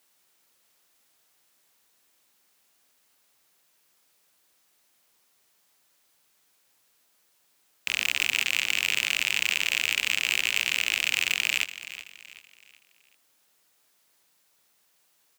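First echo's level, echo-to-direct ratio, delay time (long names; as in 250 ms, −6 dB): −14.0 dB, −13.5 dB, 378 ms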